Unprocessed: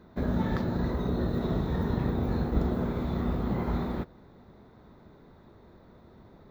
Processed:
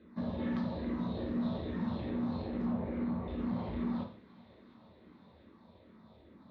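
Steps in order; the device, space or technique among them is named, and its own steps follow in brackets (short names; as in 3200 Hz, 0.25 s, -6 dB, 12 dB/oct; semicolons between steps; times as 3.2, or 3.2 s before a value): 2.65–3.28 steep low-pass 2400 Hz 96 dB/oct; barber-pole phaser into a guitar amplifier (endless phaser -2.4 Hz; soft clip -30 dBFS, distortion -11 dB; speaker cabinet 110–4300 Hz, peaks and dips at 140 Hz -9 dB, 430 Hz -6 dB, 770 Hz -7 dB, 1400 Hz -9 dB, 2000 Hz -3 dB); thin delay 0.708 s, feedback 66%, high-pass 1900 Hz, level -15.5 dB; non-linear reverb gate 0.18 s falling, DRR 1.5 dB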